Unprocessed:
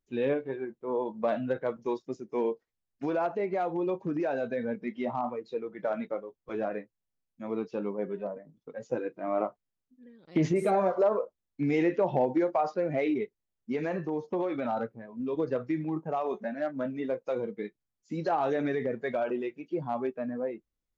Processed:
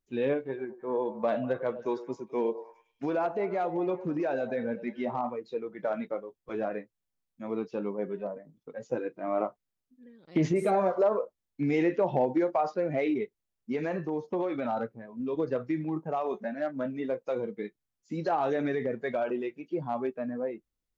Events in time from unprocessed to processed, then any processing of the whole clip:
0.48–5.27 s: repeats whose band climbs or falls 102 ms, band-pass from 520 Hz, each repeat 0.7 oct, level -10.5 dB

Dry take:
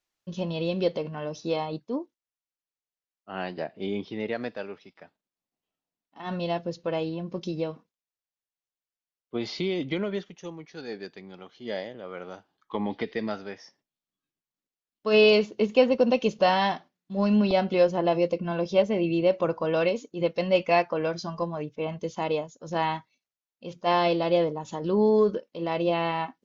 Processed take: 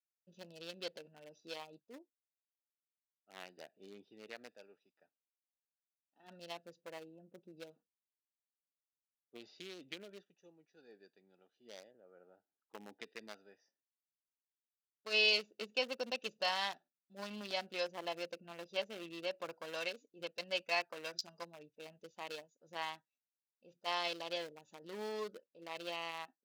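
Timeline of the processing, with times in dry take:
6.80–7.56 s: low-pass 2.3 kHz -> 1.2 kHz
11.91–13.00 s: low-pass 1.5 kHz
20.96–21.66 s: treble shelf 3.3 kHz +8.5 dB
whole clip: local Wiener filter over 41 samples; differentiator; trim +4 dB

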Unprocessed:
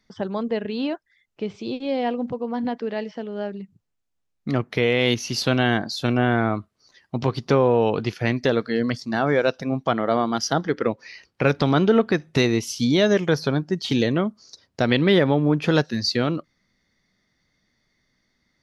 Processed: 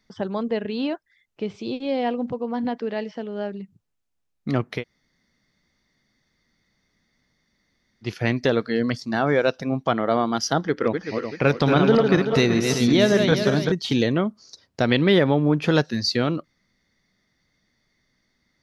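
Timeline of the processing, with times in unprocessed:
4.79–8.06 s: room tone, crossfade 0.10 s
10.64–13.72 s: backward echo that repeats 191 ms, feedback 60%, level -4.5 dB

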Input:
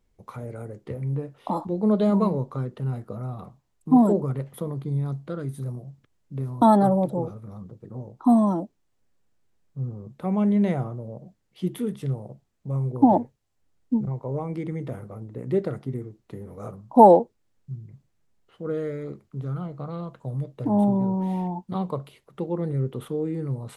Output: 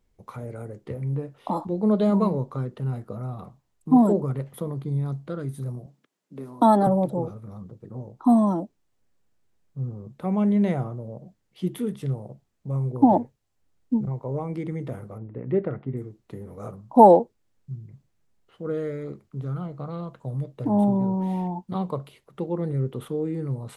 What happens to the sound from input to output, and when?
5.86–6.87 s: high-pass 200 Hz 24 dB/octave
15.18–15.97 s: low-pass 2.7 kHz 24 dB/octave

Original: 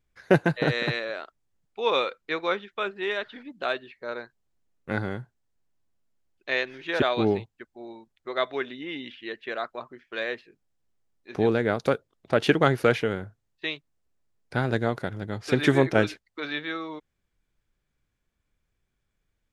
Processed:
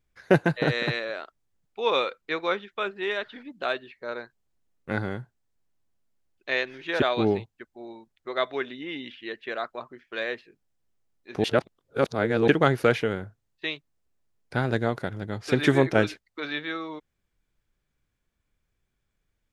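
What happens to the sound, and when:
11.44–12.48 s: reverse

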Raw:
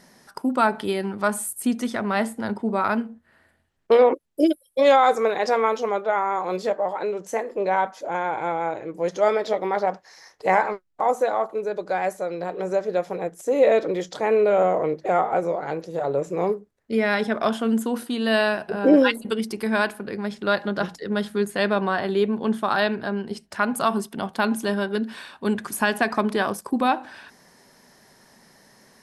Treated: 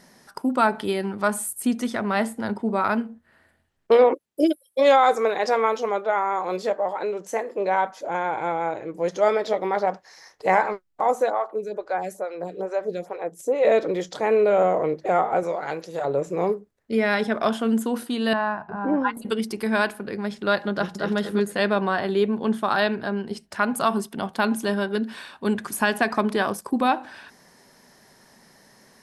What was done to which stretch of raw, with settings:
4.04–7.90 s: high-pass 170 Hz 6 dB/octave
11.30–13.65 s: lamp-driven phase shifter 2.3 Hz
15.43–16.05 s: tilt shelf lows -5 dB, about 810 Hz
18.33–19.17 s: FFT filter 170 Hz 0 dB, 520 Hz -15 dB, 920 Hz +7 dB, 3 kHz -18 dB, 11 kHz -29 dB
20.72–21.16 s: echo throw 230 ms, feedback 20%, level -3 dB

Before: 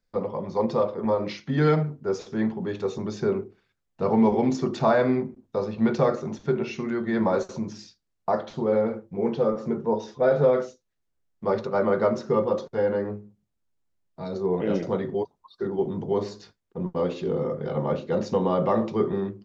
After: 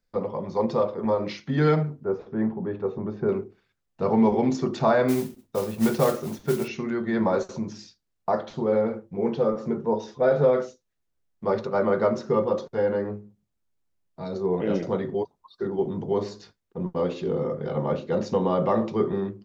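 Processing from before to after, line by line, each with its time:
2.04–3.29 s: low-pass 1.4 kHz
5.08–6.68 s: modulation noise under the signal 17 dB

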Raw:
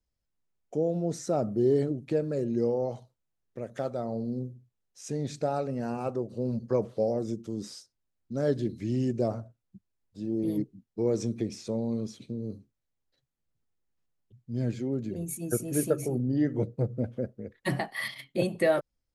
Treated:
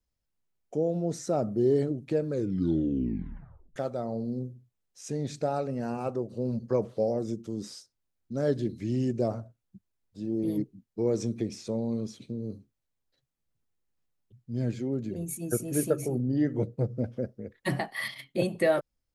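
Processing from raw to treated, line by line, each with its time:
2.26 s: tape stop 1.50 s
16.82–17.38 s: peaking EQ 5.3 kHz +8.5 dB 0.34 oct

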